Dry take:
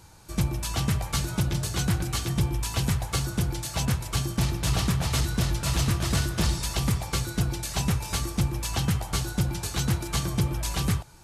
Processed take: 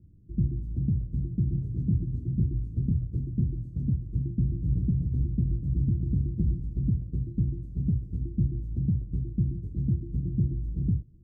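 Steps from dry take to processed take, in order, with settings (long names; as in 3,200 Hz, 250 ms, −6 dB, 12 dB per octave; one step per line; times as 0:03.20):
inverse Chebyshev low-pass filter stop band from 770 Hz, stop band 50 dB
harmonic generator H 3 −37 dB, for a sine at −16 dBFS
0:01.60–0:03.86: double-tracking delay 25 ms −6.5 dB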